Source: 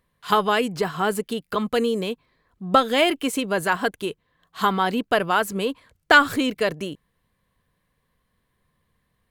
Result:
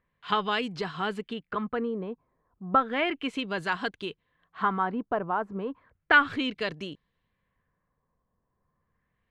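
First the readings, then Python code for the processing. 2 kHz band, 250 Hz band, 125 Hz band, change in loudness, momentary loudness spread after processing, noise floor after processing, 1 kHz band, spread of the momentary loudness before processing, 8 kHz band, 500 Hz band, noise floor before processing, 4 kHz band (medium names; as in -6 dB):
-5.0 dB, -7.0 dB, -6.5 dB, -6.5 dB, 17 LU, -79 dBFS, -6.0 dB, 15 LU, under -20 dB, -9.5 dB, -73 dBFS, -8.0 dB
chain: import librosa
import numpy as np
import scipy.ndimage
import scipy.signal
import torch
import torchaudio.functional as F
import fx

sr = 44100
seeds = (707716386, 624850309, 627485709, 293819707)

y = fx.dynamic_eq(x, sr, hz=560.0, q=1.5, threshold_db=-34.0, ratio=4.0, max_db=-5)
y = fx.filter_lfo_lowpass(y, sr, shape='sine', hz=0.33, low_hz=910.0, high_hz=4300.0, q=1.4)
y = y * 10.0 ** (-6.5 / 20.0)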